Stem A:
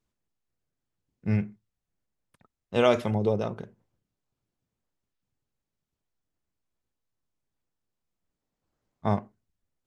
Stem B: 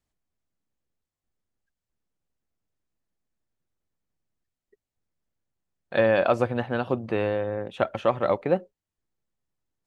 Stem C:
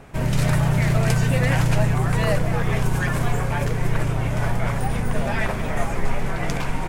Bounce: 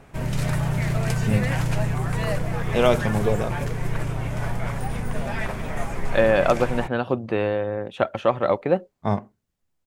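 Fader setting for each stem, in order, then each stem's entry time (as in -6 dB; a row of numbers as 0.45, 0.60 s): +2.5, +2.5, -4.5 dB; 0.00, 0.20, 0.00 s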